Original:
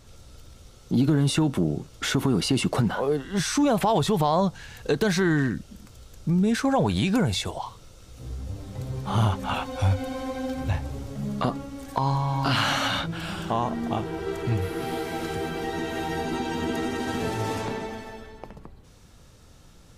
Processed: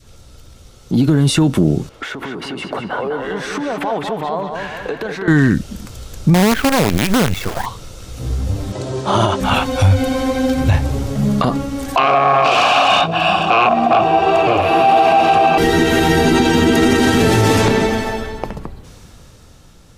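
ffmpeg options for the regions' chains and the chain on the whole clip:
ffmpeg -i in.wav -filter_complex "[0:a]asettb=1/sr,asplit=3[link_01][link_02][link_03];[link_01]atrim=end=1.894[link_04];[link_02]atrim=start=1.89:end=5.28,asetpts=PTS-STARTPTS,afade=type=in:duration=0.004:curve=qsin,afade=type=out:start_time=3.386:duration=0.004:curve=qsin,acompressor=threshold=-34dB:ratio=8:attack=3.2:release=140:knee=1:detection=peak,acrossover=split=280 2900:gain=0.2 1 0.178[link_05][link_06][link_07];[link_05][link_06][link_07]amix=inputs=3:normalize=0,asplit=2[link_08][link_09];[link_09]adelay=201,lowpass=frequency=3700:poles=1,volume=-5dB,asplit=2[link_10][link_11];[link_11]adelay=201,lowpass=frequency=3700:poles=1,volume=0.53,asplit=2[link_12][link_13];[link_13]adelay=201,lowpass=frequency=3700:poles=1,volume=0.53,asplit=2[link_14][link_15];[link_15]adelay=201,lowpass=frequency=3700:poles=1,volume=0.53,asplit=2[link_16][link_17];[link_17]adelay=201,lowpass=frequency=3700:poles=1,volume=0.53,asplit=2[link_18][link_19];[link_19]adelay=201,lowpass=frequency=3700:poles=1,volume=0.53,asplit=2[link_20][link_21];[link_21]adelay=201,lowpass=frequency=3700:poles=1,volume=0.53[link_22];[link_08][link_10][link_12][link_14][link_16][link_18][link_20][link_22]amix=inputs=8:normalize=0,atrim=end_sample=149499[link_23];[link_03]atrim=start=5.276[link_24];[link_04][link_23]acrossfade=duration=0.004:curve1=hsin:curve2=qsin[link_25];[link_25][link_24]acrossfade=duration=0.004:curve1=qsin:curve2=hsin,asettb=1/sr,asplit=3[link_26][link_27][link_28];[link_26]atrim=end=6.344[link_29];[link_27]atrim=start=6.34:end=7.66,asetpts=PTS-STARTPTS,afade=type=in:duration=0.004:curve=qsin,afade=type=out:start_time=1.316:duration=0.004:curve=qsin,lowpass=frequency=2600:width=0.5412,lowpass=frequency=2600:width=1.3066,acrusher=bits=4:dc=4:mix=0:aa=0.000001[link_30];[link_28]atrim=start=7.656[link_31];[link_29][link_30]acrossfade=duration=0.004:curve1=hsin:curve2=qsin[link_32];[link_32][link_31]acrossfade=duration=0.004:curve1=qsin:curve2=hsin,asettb=1/sr,asplit=3[link_33][link_34][link_35];[link_33]atrim=end=8.724[link_36];[link_34]atrim=start=8.72:end=9.41,asetpts=PTS-STARTPTS,afade=type=in:duration=0.004:curve=qsin,afade=type=out:start_time=0.686:duration=0.004:curve=qsin,highpass=170,equalizer=frequency=250:width_type=q:width=4:gain=-7,equalizer=frequency=360:width_type=q:width=4:gain=5,equalizer=frequency=590:width_type=q:width=4:gain=4,equalizer=frequency=2200:width_type=q:width=4:gain=-4,lowpass=frequency=8900:width=0.5412,lowpass=frequency=8900:width=1.3066,aecho=1:1:3.1:0.44,atrim=end_sample=30429[link_37];[link_35]atrim=start=9.406[link_38];[link_36][link_37]acrossfade=duration=0.004:curve1=hsin:curve2=qsin[link_39];[link_39][link_38]acrossfade=duration=0.004:curve1=qsin:curve2=hsin,asettb=1/sr,asplit=3[link_40][link_41][link_42];[link_40]atrim=end=11.964[link_43];[link_41]atrim=start=11.96:end=15.58,asetpts=PTS-STARTPTS,afade=type=in:duration=0.004:curve=qsin,afade=type=out:start_time=3.616:duration=0.004:curve=qsin,aecho=1:1:1.1:0.6,atrim=end_sample=159642,aeval=exprs='0.422*sin(PI/2*5.62*val(0)/0.422)':channel_layout=same,asplit=3[link_44][link_45][link_46];[link_44]bandpass=frequency=730:width_type=q:width=8,volume=0dB[link_47];[link_45]bandpass=frequency=1090:width_type=q:width=8,volume=-6dB[link_48];[link_46]bandpass=frequency=2440:width_type=q:width=8,volume=-9dB[link_49];[link_47][link_48][link_49]amix=inputs=3:normalize=0[link_50];[link_42]atrim=start=15.576[link_51];[link_43][link_50]acrossfade=duration=0.004:curve1=hsin:curve2=qsin[link_52];[link_52][link_51]acrossfade=duration=0.004:curve1=qsin:curve2=hsin,adynamicequalizer=threshold=0.0112:dfrequency=860:dqfactor=1.3:tfrequency=860:tqfactor=1.3:attack=5:release=100:ratio=0.375:range=2.5:mode=cutabove:tftype=bell,dynaudnorm=framelen=400:gausssize=9:maxgain=16.5dB,alimiter=limit=-9.5dB:level=0:latency=1:release=48,volume=5.5dB" out.wav

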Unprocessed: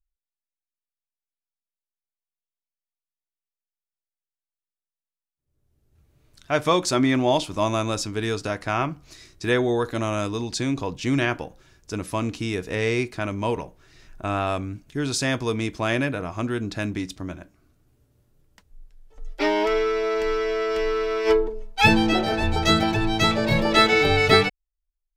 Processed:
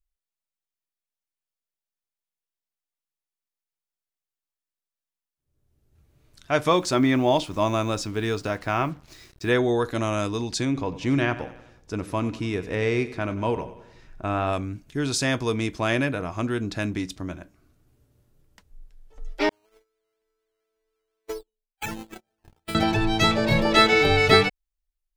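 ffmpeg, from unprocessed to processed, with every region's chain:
ffmpeg -i in.wav -filter_complex "[0:a]asettb=1/sr,asplit=3[link_01][link_02][link_03];[link_01]atrim=end=6.684[link_04];[link_02]atrim=start=6.68:end=9.55,asetpts=PTS-STARTPTS,afade=type=in:duration=0.004:curve=qsin,afade=type=out:start_time=2.866:duration=0.004:curve=qsin,acrusher=bits=7:mix=0:aa=0.5,equalizer=frequency=10000:width=0.39:gain=-5[link_05];[link_03]atrim=start=9.546[link_06];[link_04][link_05]acrossfade=duration=0.004:curve1=hsin:curve2=qsin[link_07];[link_07][link_06]acrossfade=duration=0.004:curve1=qsin:curve2=hsin,asettb=1/sr,asplit=3[link_08][link_09][link_10];[link_08]atrim=end=10.654[link_11];[link_09]atrim=start=10.65:end=14.53,asetpts=PTS-STARTPTS,afade=type=in:duration=0.004:curve=qsin,afade=type=out:start_time=3.876:duration=0.004:curve=qsin,highshelf=frequency=3600:gain=-9,aecho=1:1:93|186|279|372|465:0.168|0.089|0.0472|0.025|0.0132,atrim=end_sample=171108[link_12];[link_10]atrim=start=14.526[link_13];[link_11][link_12]acrossfade=duration=0.004:curve1=hsin:curve2=qsin[link_14];[link_14][link_13]acrossfade=duration=0.004:curve1=qsin:curve2=hsin,asettb=1/sr,asplit=3[link_15][link_16][link_17];[link_15]atrim=end=19.494[link_18];[link_16]atrim=start=19.49:end=22.75,asetpts=PTS-STARTPTS,afade=type=in:duration=0.004:curve=qsin,afade=type=out:start_time=3.256:duration=0.004:curve=qsin,agate=range=-55dB:threshold=-17dB:ratio=16:release=100:detection=peak,acrusher=samples=10:mix=1:aa=0.000001:lfo=1:lforange=6:lforate=2.1,acompressor=threshold=-28dB:ratio=10:attack=3.2:release=140:knee=1:detection=peak[link_19];[link_17]atrim=start=22.746[link_20];[link_18][link_19]acrossfade=duration=0.004:curve1=hsin:curve2=qsin[link_21];[link_21][link_20]acrossfade=duration=0.004:curve1=qsin:curve2=hsin" out.wav

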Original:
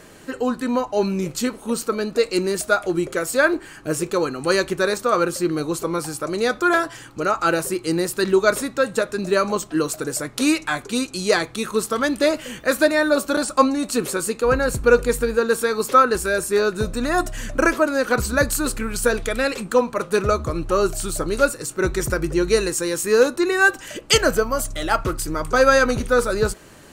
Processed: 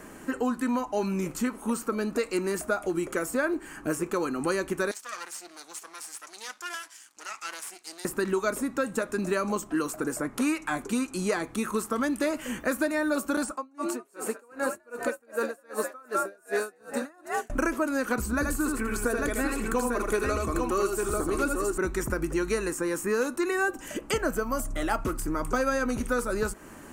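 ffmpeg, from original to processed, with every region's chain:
ffmpeg -i in.wav -filter_complex "[0:a]asettb=1/sr,asplit=3[link_01][link_02][link_03];[link_01]atrim=end=4.914[link_04];[link_02]atrim=start=4.91:end=8.05,asetpts=PTS-STARTPTS,afade=type=in:duration=0.004:curve=qsin,afade=type=out:start_time=3.136:duration=0.004:curve=qsin,highshelf=frequency=5700:gain=10.5,aeval=exprs='max(val(0),0)':channel_layout=same,bandpass=frequency=5000:width_type=q:width=1.2[link_05];[link_03]atrim=start=8.046[link_06];[link_04][link_05]acrossfade=duration=0.004:curve1=hsin:curve2=qsin[link_07];[link_07][link_06]acrossfade=duration=0.004:curve1=qsin:curve2=hsin,asettb=1/sr,asplit=3[link_08][link_09][link_10];[link_08]atrim=end=13.514[link_11];[link_09]atrim=start=13.51:end=17.5,asetpts=PTS-STARTPTS,afade=type=in:duration=0.004:curve=qsin,afade=type=out:start_time=3.986:duration=0.004:curve=qsin,highpass=310,asplit=6[link_12][link_13][link_14][link_15][link_16][link_17];[link_13]adelay=203,afreqshift=74,volume=-4.5dB[link_18];[link_14]adelay=406,afreqshift=148,volume=-12.5dB[link_19];[link_15]adelay=609,afreqshift=222,volume=-20.4dB[link_20];[link_16]adelay=812,afreqshift=296,volume=-28.4dB[link_21];[link_17]adelay=1015,afreqshift=370,volume=-36.3dB[link_22];[link_12][link_18][link_19][link_20][link_21][link_22]amix=inputs=6:normalize=0,atrim=end_sample=175959,aeval=exprs='val(0)*pow(10,-38*(0.5-0.5*cos(2*PI*2.6*n/s))/20)':channel_layout=same[link_23];[link_10]atrim=start=17.496[link_24];[link_11][link_23]acrossfade=duration=0.004:curve1=hsin:curve2=qsin[link_25];[link_25][link_24]acrossfade=duration=0.004:curve1=qsin:curve2=hsin,asettb=1/sr,asplit=3[link_26][link_27][link_28];[link_26]atrim=end=18.344[link_29];[link_27]atrim=start=18.34:end=21.78,asetpts=PTS-STARTPTS,afade=type=in:duration=0.004:curve=qsin,afade=type=out:start_time=3.436:duration=0.004:curve=qsin,aecho=1:1:2.7:0.46,atrim=end_sample=151704,aecho=1:1:79|845:0.596|0.596,atrim=end_sample=151704[link_30];[link_28]atrim=start=21.776[link_31];[link_29][link_30]acrossfade=duration=0.004:curve1=hsin:curve2=qsin[link_32];[link_32][link_31]acrossfade=duration=0.004:curve1=qsin:curve2=hsin,equalizer=frequency=125:width_type=o:width=1:gain=-7,equalizer=frequency=250:width_type=o:width=1:gain=6,equalizer=frequency=500:width_type=o:width=1:gain=-4,equalizer=frequency=1000:width_type=o:width=1:gain=3,equalizer=frequency=4000:width_type=o:width=1:gain=-11,acrossover=split=830|2200[link_33][link_34][link_35];[link_33]acompressor=threshold=-27dB:ratio=4[link_36];[link_34]acompressor=threshold=-36dB:ratio=4[link_37];[link_35]acompressor=threshold=-37dB:ratio=4[link_38];[link_36][link_37][link_38]amix=inputs=3:normalize=0" out.wav

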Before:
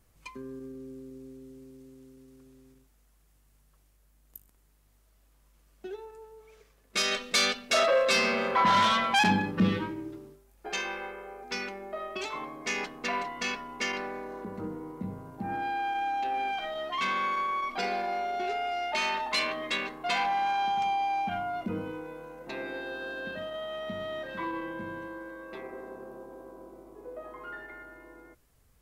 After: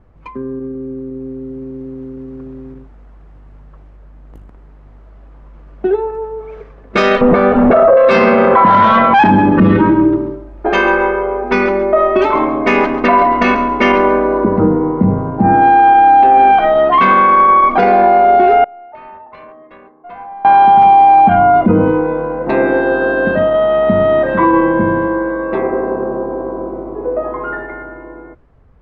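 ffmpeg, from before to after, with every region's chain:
ffmpeg -i in.wav -filter_complex "[0:a]asettb=1/sr,asplit=3[link_01][link_02][link_03];[link_01]atrim=end=7.214[link_04];[link_02]atrim=start=7.21:end=7.97,asetpts=PTS-STARTPTS,afade=type=in:duration=0.004:curve=qsin,afade=type=out:start_time=0.756:duration=0.004:curve=qsin,aeval=exprs='val(0)+0.5*0.0398*sgn(val(0))':channel_layout=same,lowpass=1100,acompressor=threshold=-30dB:ratio=2:attack=3.2:release=140:knee=1:detection=peak[link_05];[link_03]atrim=start=7.966[link_06];[link_04][link_05]acrossfade=duration=0.004:curve1=hsin:curve2=qsin[link_07];[link_07][link_06]acrossfade=duration=0.004:curve1=qsin:curve2=hsin,asettb=1/sr,asplit=3[link_08][link_09][link_10];[link_08]atrim=end=9.224[link_11];[link_09]atrim=start=9.22:end=14.57,asetpts=PTS-STARTPTS,afade=type=in:duration=0.004:curve=qsin,afade=type=out:start_time=5.346:duration=0.004:curve=qsin,aecho=1:1:3.2:0.44,atrim=end_sample=235935,aecho=1:1:136|272|408:0.211|0.0592|0.0166,atrim=end_sample=235935[link_12];[link_10]atrim=start=14.566[link_13];[link_11][link_12]acrossfade=duration=0.004:curve1=hsin:curve2=qsin[link_14];[link_14][link_13]acrossfade=duration=0.004:curve1=qsin:curve2=hsin,asettb=1/sr,asplit=3[link_15][link_16][link_17];[link_15]atrim=end=18.644[link_18];[link_16]atrim=start=18.64:end=20.45,asetpts=PTS-STARTPTS,afade=type=in:duration=0.004:curve=qsin,afade=type=out:start_time=1.806:duration=0.004:curve=qsin,aderivative,adynamicsmooth=sensitivity=1.5:basefreq=510[link_19];[link_17]atrim=start=20.446[link_20];[link_18][link_19]acrossfade=duration=0.004:curve1=hsin:curve2=qsin[link_21];[link_21][link_20]acrossfade=duration=0.004:curve1=qsin:curve2=hsin,lowpass=1200,dynaudnorm=framelen=380:gausssize=9:maxgain=8.5dB,alimiter=level_in=18.5dB:limit=-1dB:release=50:level=0:latency=1,volume=-1dB" out.wav

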